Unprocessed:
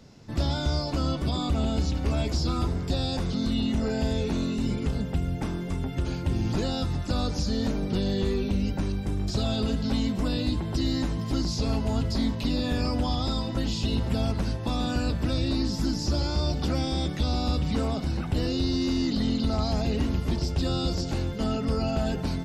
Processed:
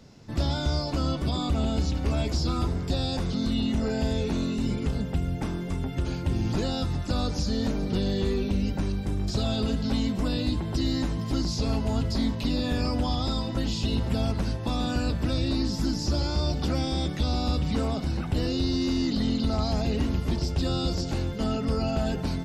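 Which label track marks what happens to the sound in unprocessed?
7.430000	7.910000	echo throw 0.36 s, feedback 75%, level -16.5 dB

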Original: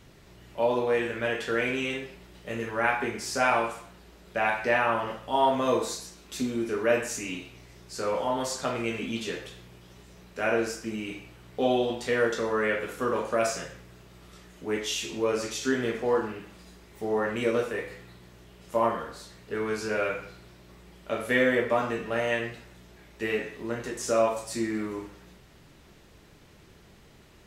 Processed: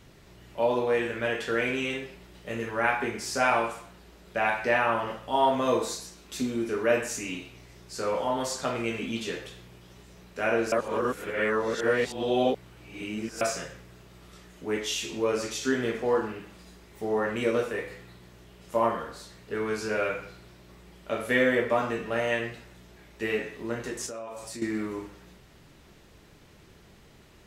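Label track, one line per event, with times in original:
10.720000	13.410000	reverse
24.060000	24.620000	compressor, threshold -36 dBFS

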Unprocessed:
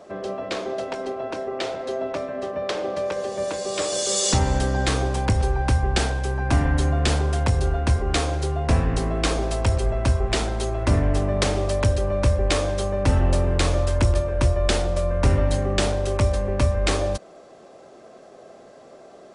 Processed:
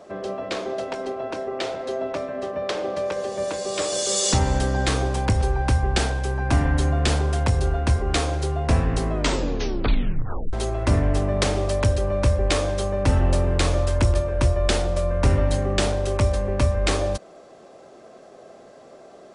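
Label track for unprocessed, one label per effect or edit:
9.090000	9.090000	tape stop 1.44 s

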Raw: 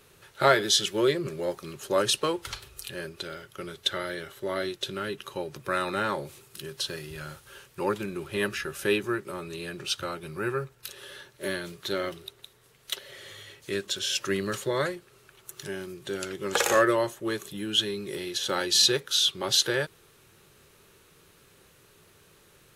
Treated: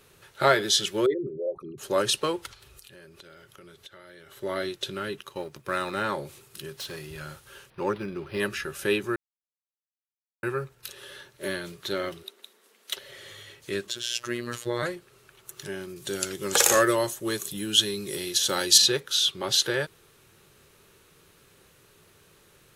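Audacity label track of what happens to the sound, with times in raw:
1.060000	1.780000	formant sharpening exponent 3
2.460000	4.320000	compressor 4:1, threshold -48 dBFS
5.200000	6.020000	G.711 law mismatch coded by A
6.790000	7.200000	hard clip -33.5 dBFS
7.700000	8.400000	decimation joined by straight lines rate divided by 6×
9.160000	10.430000	mute
12.230000	12.960000	steep high-pass 190 Hz 96 dB/oct
13.890000	14.830000	robotiser 120 Hz
15.960000	18.780000	tone controls bass +2 dB, treble +11 dB

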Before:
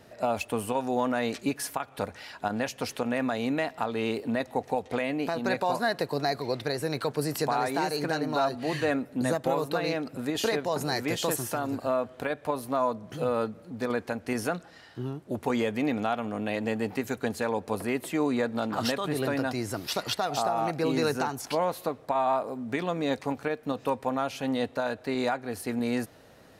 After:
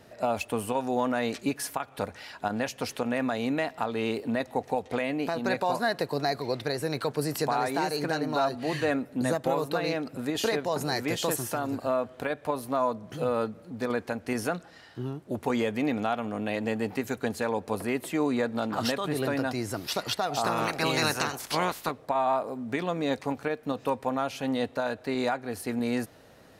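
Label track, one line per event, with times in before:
20.430000	21.900000	spectral limiter ceiling under each frame's peak by 20 dB

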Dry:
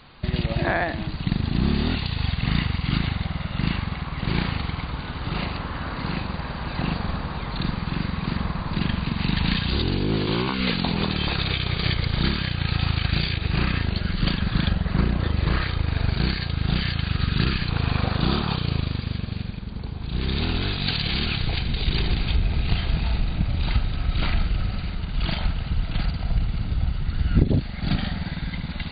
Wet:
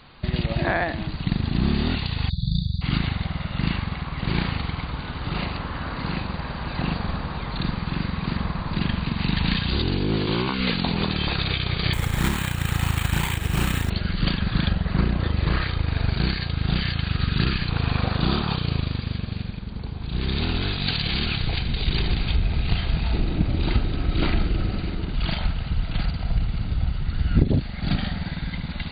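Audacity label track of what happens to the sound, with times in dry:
2.290000	2.810000	spectral delete 200–3400 Hz
11.930000	13.900000	careless resampling rate divided by 8×, down none, up hold
23.120000	25.150000	bell 340 Hz +12.5 dB 1 oct

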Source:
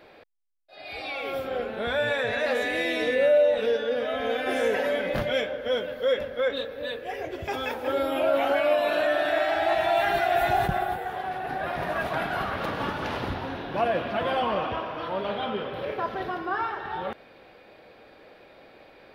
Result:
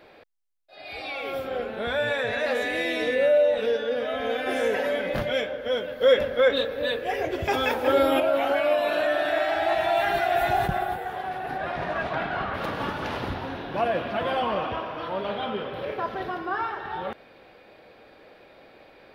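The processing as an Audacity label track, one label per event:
6.010000	8.200000	gain +6 dB
11.570000	12.530000	LPF 8200 Hz -> 3200 Hz

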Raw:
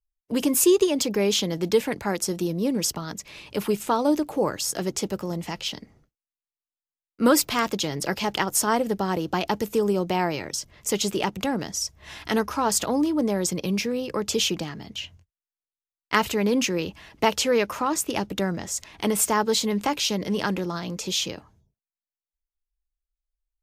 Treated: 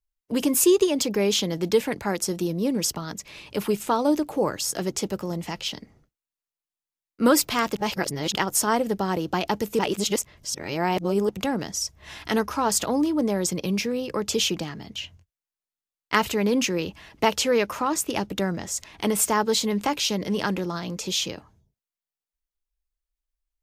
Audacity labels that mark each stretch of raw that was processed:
7.760000	8.350000	reverse
9.790000	11.290000	reverse

